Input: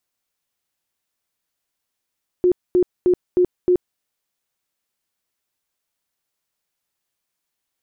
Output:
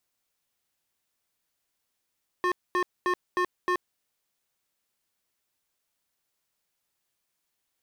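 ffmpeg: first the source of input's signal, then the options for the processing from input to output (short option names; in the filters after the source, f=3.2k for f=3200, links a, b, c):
-f lavfi -i "aevalsrc='0.266*sin(2*PI*360*mod(t,0.31))*lt(mod(t,0.31),28/360)':d=1.55:s=44100"
-af "aeval=exprs='0.0841*(abs(mod(val(0)/0.0841+3,4)-2)-1)':c=same"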